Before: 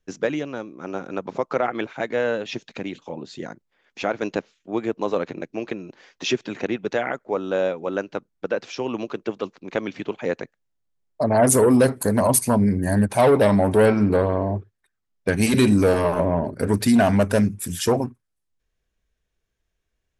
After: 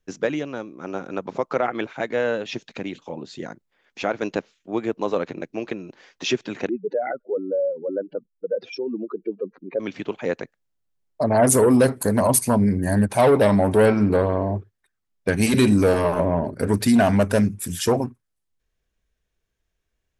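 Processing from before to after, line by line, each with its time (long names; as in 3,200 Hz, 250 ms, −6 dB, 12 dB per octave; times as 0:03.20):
0:06.69–0:09.80: expanding power law on the bin magnitudes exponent 2.8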